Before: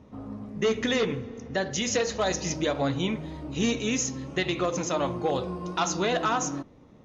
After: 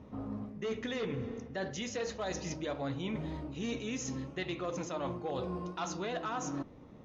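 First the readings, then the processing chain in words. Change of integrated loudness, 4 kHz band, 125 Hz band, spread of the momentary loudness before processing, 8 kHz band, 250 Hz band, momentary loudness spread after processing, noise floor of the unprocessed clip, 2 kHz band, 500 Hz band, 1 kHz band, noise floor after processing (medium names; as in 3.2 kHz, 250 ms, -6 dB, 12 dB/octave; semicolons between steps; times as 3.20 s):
-10.0 dB, -12.0 dB, -7.0 dB, 9 LU, no reading, -8.5 dB, 4 LU, -53 dBFS, -11.0 dB, -10.0 dB, -10.0 dB, -53 dBFS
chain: reverse; compression 6:1, threshold -34 dBFS, peak gain reduction 12.5 dB; reverse; treble shelf 6.2 kHz -10 dB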